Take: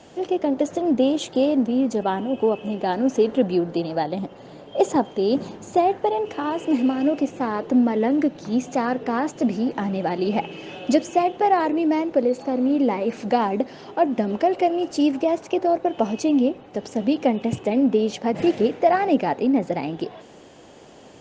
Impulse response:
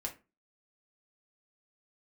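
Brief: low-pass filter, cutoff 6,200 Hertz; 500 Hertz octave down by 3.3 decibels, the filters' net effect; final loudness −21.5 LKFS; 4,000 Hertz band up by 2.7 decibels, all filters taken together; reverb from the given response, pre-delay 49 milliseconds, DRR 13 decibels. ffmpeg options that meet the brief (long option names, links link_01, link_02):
-filter_complex "[0:a]lowpass=6200,equalizer=frequency=500:width_type=o:gain=-4.5,equalizer=frequency=4000:width_type=o:gain=4.5,asplit=2[link_01][link_02];[1:a]atrim=start_sample=2205,adelay=49[link_03];[link_02][link_03]afir=irnorm=-1:irlink=0,volume=-13dB[link_04];[link_01][link_04]amix=inputs=2:normalize=0,volume=2dB"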